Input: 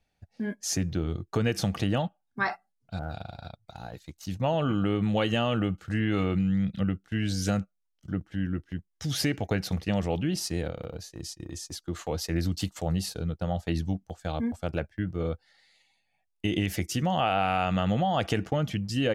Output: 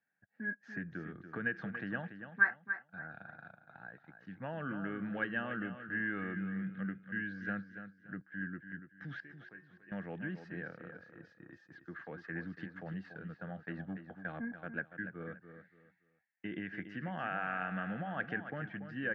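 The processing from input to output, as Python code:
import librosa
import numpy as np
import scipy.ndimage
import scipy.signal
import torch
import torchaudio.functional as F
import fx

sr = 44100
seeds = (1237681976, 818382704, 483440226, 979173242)

y = scipy.signal.sosfilt(scipy.signal.butter(4, 160.0, 'highpass', fs=sr, output='sos'), x)
y = fx.level_steps(y, sr, step_db=13, at=(2.5, 3.04))
y = fx.peak_eq(y, sr, hz=640.0, db=-7.0, octaves=2.8)
y = fx.leveller(y, sr, passes=1, at=(13.79, 14.45))
y = fx.ladder_lowpass(y, sr, hz=1700.0, resonance_pct=85)
y = fx.dynamic_eq(y, sr, hz=1000.0, q=1.1, threshold_db=-53.0, ratio=4.0, max_db=-3)
y = fx.comb_fb(y, sr, f0_hz=360.0, decay_s=0.42, harmonics='odd', damping=0.0, mix_pct=90, at=(9.2, 9.92))
y = fx.echo_feedback(y, sr, ms=286, feedback_pct=28, wet_db=-10.0)
y = F.gain(torch.from_numpy(y), 4.0).numpy()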